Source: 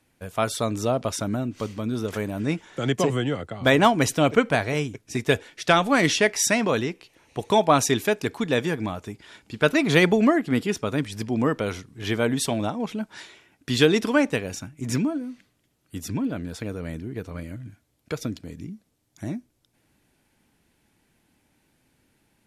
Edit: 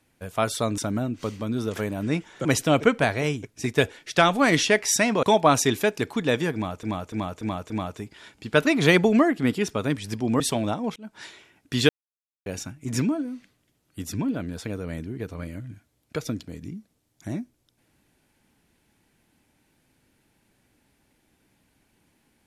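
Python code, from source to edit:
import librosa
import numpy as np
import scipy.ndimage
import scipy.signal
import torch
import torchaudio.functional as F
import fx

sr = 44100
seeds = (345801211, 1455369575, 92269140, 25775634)

y = fx.edit(x, sr, fx.cut(start_s=0.78, length_s=0.37),
    fx.cut(start_s=2.82, length_s=1.14),
    fx.cut(start_s=6.74, length_s=0.73),
    fx.repeat(start_s=8.78, length_s=0.29, count=5),
    fx.cut(start_s=11.48, length_s=0.88),
    fx.fade_in_span(start_s=12.92, length_s=0.28),
    fx.silence(start_s=13.85, length_s=0.57), tone=tone)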